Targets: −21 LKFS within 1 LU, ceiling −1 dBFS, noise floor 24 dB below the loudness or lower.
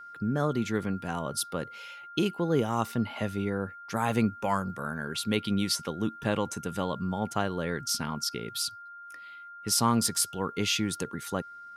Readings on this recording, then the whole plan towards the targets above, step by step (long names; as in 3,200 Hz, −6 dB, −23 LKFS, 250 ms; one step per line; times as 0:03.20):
interfering tone 1,400 Hz; level of the tone −43 dBFS; integrated loudness −30.0 LKFS; sample peak −12.5 dBFS; target loudness −21.0 LKFS
→ notch filter 1,400 Hz, Q 30
level +9 dB